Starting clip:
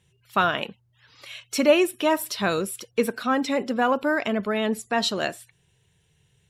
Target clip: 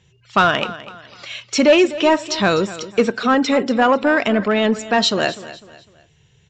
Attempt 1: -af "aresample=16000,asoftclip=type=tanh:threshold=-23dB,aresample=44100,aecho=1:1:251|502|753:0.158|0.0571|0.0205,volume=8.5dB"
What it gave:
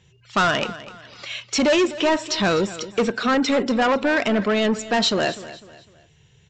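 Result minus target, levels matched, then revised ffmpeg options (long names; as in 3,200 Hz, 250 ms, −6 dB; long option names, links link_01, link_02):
soft clipping: distortion +9 dB
-af "aresample=16000,asoftclip=type=tanh:threshold=-13.5dB,aresample=44100,aecho=1:1:251|502|753:0.158|0.0571|0.0205,volume=8.5dB"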